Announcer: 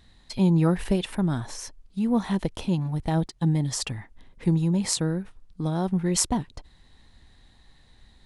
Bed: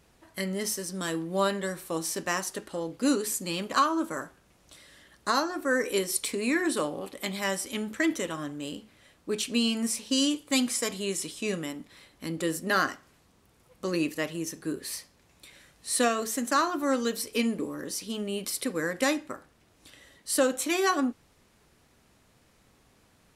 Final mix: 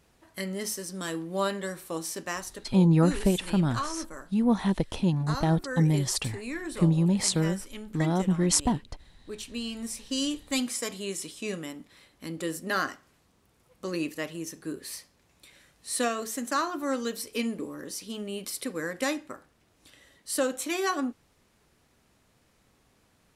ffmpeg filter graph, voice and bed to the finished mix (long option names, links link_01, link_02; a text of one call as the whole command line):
ffmpeg -i stem1.wav -i stem2.wav -filter_complex "[0:a]adelay=2350,volume=0dB[link_01];[1:a]volume=4dB,afade=type=out:start_time=1.92:duration=0.93:silence=0.446684,afade=type=in:start_time=9.63:duration=0.75:silence=0.501187[link_02];[link_01][link_02]amix=inputs=2:normalize=0" out.wav